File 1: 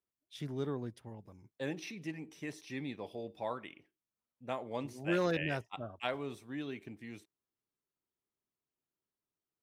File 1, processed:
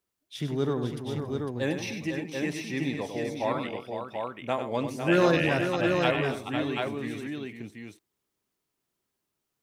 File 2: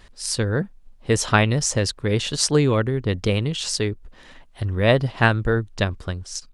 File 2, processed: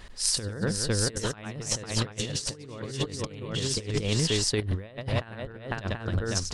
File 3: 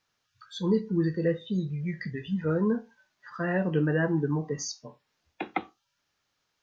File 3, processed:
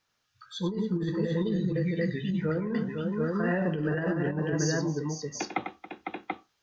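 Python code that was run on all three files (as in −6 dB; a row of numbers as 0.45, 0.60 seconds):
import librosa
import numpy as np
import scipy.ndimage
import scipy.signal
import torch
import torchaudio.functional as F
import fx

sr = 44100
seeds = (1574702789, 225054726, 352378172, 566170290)

y = fx.echo_multitap(x, sr, ms=(97, 277, 503, 735), db=(-8.5, -17.0, -7.5, -4.5))
y = fx.over_compress(y, sr, threshold_db=-26.0, ratio=-0.5)
y = y * 10.0 ** (-30 / 20.0) / np.sqrt(np.mean(np.square(y)))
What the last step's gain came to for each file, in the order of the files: +9.0, −4.0, −1.0 decibels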